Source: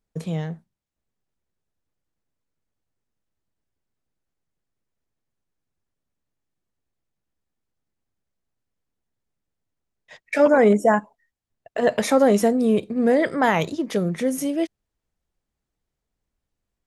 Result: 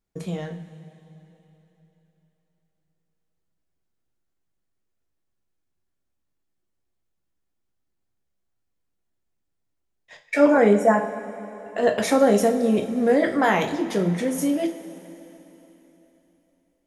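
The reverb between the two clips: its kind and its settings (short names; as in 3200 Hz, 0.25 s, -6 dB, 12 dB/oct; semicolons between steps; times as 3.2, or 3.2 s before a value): two-slope reverb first 0.31 s, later 3.6 s, from -18 dB, DRR 2.5 dB; gain -2 dB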